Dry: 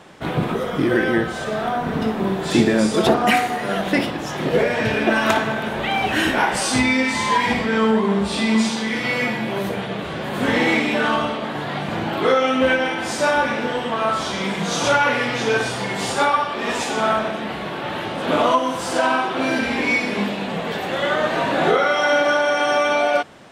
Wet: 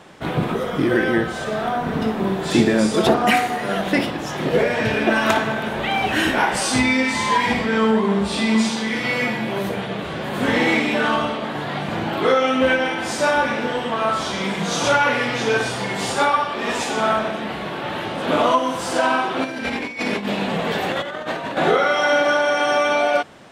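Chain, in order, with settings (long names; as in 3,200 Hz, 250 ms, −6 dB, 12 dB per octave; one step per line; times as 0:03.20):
0:19.44–0:21.57: compressor whose output falls as the input rises −24 dBFS, ratio −0.5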